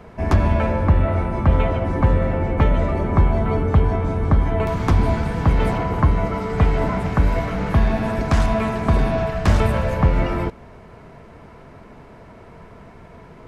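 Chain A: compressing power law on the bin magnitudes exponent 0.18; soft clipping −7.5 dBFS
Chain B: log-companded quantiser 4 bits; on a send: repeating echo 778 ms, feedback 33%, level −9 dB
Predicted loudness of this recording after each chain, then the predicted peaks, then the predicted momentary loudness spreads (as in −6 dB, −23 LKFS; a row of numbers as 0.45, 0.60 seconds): −17.0, −19.0 LKFS; −7.5, −3.5 dBFS; 3, 9 LU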